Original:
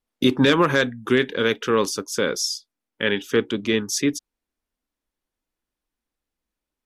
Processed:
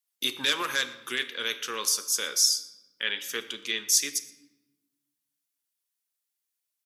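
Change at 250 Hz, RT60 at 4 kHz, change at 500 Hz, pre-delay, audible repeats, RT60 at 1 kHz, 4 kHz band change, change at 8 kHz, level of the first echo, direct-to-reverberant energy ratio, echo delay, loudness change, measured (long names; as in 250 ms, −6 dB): −22.0 dB, 0.70 s, −18.5 dB, 9 ms, 1, 1.0 s, 0.0 dB, +4.5 dB, −22.5 dB, 8.5 dB, 119 ms, −5.0 dB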